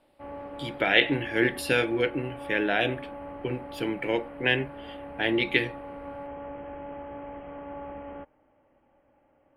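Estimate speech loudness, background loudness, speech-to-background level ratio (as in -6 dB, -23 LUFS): -26.5 LUFS, -41.0 LUFS, 14.5 dB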